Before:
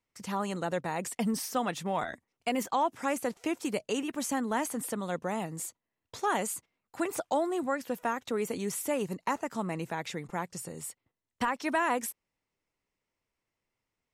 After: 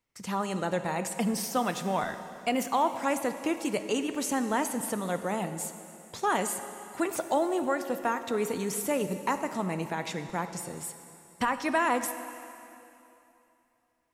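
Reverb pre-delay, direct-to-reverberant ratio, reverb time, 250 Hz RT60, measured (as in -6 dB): 5 ms, 9.0 dB, 2.9 s, 2.8 s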